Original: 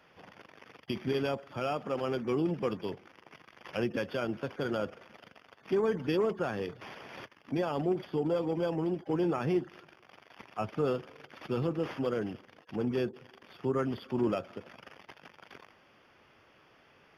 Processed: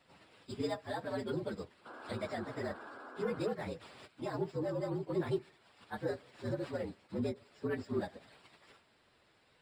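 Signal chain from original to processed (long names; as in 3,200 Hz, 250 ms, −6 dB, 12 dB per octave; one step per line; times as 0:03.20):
partials spread apart or drawn together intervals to 116%
time stretch by phase vocoder 0.56×
sound drawn into the spectrogram noise, 0:01.85–0:03.45, 220–1,700 Hz −50 dBFS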